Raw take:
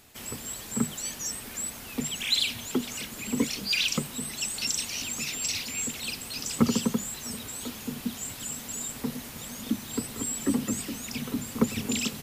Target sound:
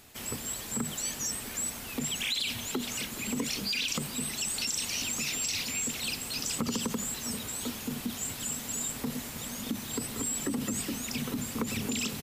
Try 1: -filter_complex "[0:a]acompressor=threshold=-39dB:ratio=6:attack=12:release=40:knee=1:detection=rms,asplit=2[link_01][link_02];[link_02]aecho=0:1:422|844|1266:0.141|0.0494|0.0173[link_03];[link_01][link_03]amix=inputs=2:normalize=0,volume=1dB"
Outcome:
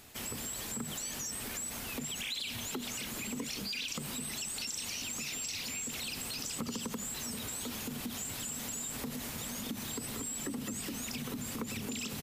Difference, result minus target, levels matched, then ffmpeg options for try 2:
downward compressor: peak gain reduction +6.5 dB
-filter_complex "[0:a]acompressor=threshold=-31dB:ratio=6:attack=12:release=40:knee=1:detection=rms,asplit=2[link_01][link_02];[link_02]aecho=0:1:422|844|1266:0.141|0.0494|0.0173[link_03];[link_01][link_03]amix=inputs=2:normalize=0,volume=1dB"

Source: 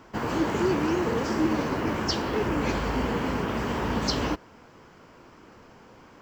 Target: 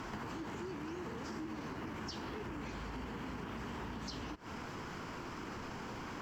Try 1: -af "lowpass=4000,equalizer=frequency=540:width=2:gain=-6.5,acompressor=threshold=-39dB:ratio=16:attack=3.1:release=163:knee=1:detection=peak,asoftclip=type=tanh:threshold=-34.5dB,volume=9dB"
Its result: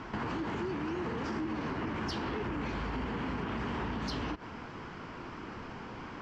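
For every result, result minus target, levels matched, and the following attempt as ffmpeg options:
8,000 Hz band −8.5 dB; downward compressor: peak gain reduction −8.5 dB
-af "lowpass=15000,equalizer=frequency=540:width=2:gain=-6.5,acompressor=threshold=-39dB:ratio=16:attack=3.1:release=163:knee=1:detection=peak,asoftclip=type=tanh:threshold=-34.5dB,volume=9dB"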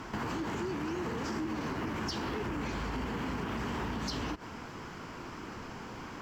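downward compressor: peak gain reduction −8.5 dB
-af "lowpass=15000,equalizer=frequency=540:width=2:gain=-6.5,acompressor=threshold=-48dB:ratio=16:attack=3.1:release=163:knee=1:detection=peak,asoftclip=type=tanh:threshold=-34.5dB,volume=9dB"

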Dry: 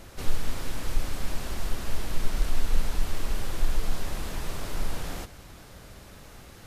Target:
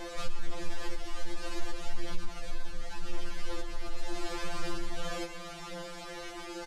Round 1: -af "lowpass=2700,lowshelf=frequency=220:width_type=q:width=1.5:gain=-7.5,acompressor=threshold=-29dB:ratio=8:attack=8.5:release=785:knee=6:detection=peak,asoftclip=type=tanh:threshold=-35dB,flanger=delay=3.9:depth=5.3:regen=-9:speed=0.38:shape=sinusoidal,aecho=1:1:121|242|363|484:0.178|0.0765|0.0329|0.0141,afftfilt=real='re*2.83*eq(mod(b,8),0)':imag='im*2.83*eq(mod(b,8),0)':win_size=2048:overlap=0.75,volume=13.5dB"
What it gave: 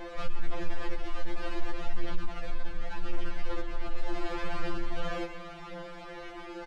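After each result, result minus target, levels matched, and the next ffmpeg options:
8,000 Hz band −12.5 dB; downward compressor: peak gain reduction −5.5 dB
-af "lowpass=6900,lowshelf=frequency=220:width_type=q:width=1.5:gain=-7.5,acompressor=threshold=-29dB:ratio=8:attack=8.5:release=785:knee=6:detection=peak,asoftclip=type=tanh:threshold=-35dB,flanger=delay=3.9:depth=5.3:regen=-9:speed=0.38:shape=sinusoidal,aecho=1:1:121|242|363|484:0.178|0.0765|0.0329|0.0141,afftfilt=real='re*2.83*eq(mod(b,8),0)':imag='im*2.83*eq(mod(b,8),0)':win_size=2048:overlap=0.75,volume=13.5dB"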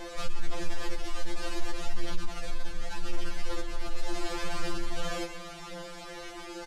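downward compressor: peak gain reduction −5.5 dB
-af "lowpass=6900,lowshelf=frequency=220:width_type=q:width=1.5:gain=-7.5,acompressor=threshold=-35.5dB:ratio=8:attack=8.5:release=785:knee=6:detection=peak,asoftclip=type=tanh:threshold=-35dB,flanger=delay=3.9:depth=5.3:regen=-9:speed=0.38:shape=sinusoidal,aecho=1:1:121|242|363|484:0.178|0.0765|0.0329|0.0141,afftfilt=real='re*2.83*eq(mod(b,8),0)':imag='im*2.83*eq(mod(b,8),0)':win_size=2048:overlap=0.75,volume=13.5dB"

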